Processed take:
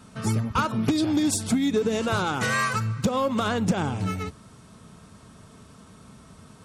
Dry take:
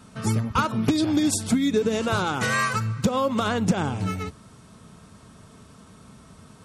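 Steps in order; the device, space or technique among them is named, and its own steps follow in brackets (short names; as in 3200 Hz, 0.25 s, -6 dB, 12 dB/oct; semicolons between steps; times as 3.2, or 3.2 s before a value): parallel distortion (in parallel at -7 dB: hard clip -22 dBFS, distortion -10 dB); on the sum: gain -3.5 dB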